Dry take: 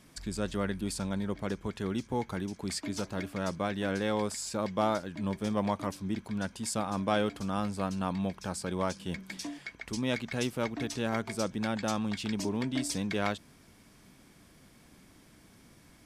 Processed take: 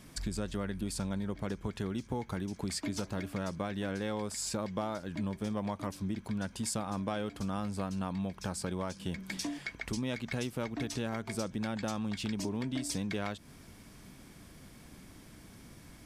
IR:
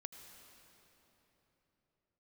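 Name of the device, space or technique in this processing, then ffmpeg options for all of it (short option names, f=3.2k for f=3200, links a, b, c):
ASMR close-microphone chain: -af "lowshelf=f=150:g=5.5,acompressor=threshold=-35dB:ratio=6,highshelf=f=12k:g=3,volume=3dB"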